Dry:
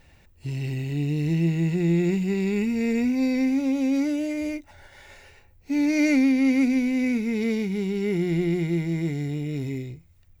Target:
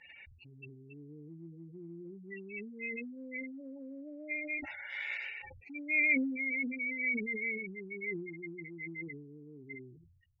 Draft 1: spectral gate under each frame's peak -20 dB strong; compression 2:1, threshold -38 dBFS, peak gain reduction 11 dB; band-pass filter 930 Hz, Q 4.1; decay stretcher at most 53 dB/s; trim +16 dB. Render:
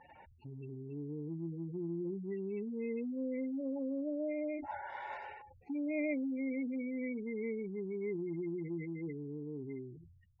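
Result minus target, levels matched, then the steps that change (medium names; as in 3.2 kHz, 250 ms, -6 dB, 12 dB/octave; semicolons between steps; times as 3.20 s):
1 kHz band +16.0 dB
change: band-pass filter 2.3 kHz, Q 4.1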